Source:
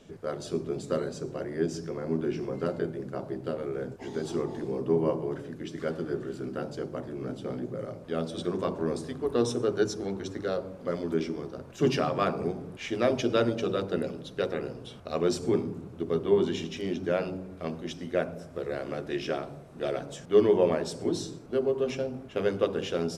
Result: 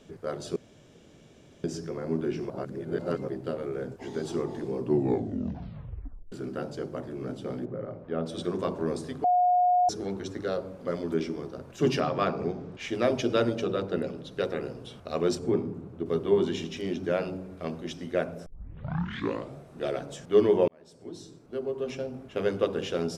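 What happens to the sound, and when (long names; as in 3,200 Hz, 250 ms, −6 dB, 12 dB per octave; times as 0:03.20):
0:00.56–0:01.64: fill with room tone
0:02.50–0:03.28: reverse
0:04.78: tape stop 1.54 s
0:07.65–0:08.26: low-pass filter 1,800 Hz
0:09.24–0:09.89: beep over 720 Hz −19 dBFS
0:12.00–0:12.80: low-pass filter 6,500 Hz 24 dB per octave
0:13.63–0:14.31: high-shelf EQ 5,200 Hz → 8,100 Hz −8 dB
0:15.35–0:16.06: high-shelf EQ 2,600 Hz −10.5 dB
0:18.46: tape start 1.13 s
0:20.68–0:22.50: fade in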